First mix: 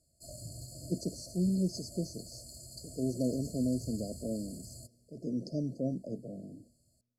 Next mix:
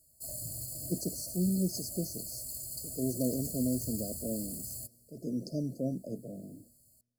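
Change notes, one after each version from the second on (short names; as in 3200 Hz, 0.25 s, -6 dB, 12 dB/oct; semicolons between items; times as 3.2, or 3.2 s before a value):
master: remove LPF 5700 Hz 12 dB/oct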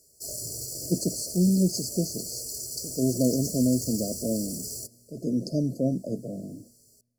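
speech +8.0 dB; background: remove fixed phaser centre 1600 Hz, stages 6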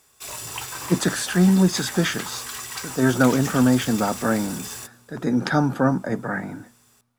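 speech +5.5 dB; master: remove brick-wall FIR band-stop 690–4200 Hz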